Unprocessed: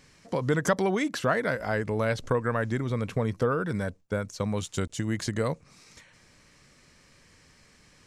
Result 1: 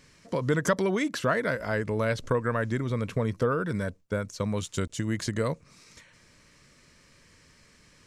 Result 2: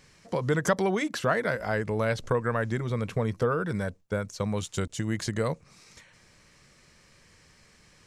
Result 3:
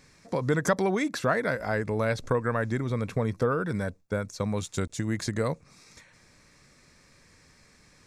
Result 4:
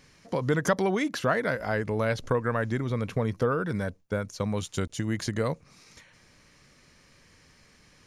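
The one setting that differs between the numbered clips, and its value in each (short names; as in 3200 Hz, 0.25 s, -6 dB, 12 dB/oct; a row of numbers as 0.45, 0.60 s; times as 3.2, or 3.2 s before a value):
notch, frequency: 780, 270, 3000, 7900 Hz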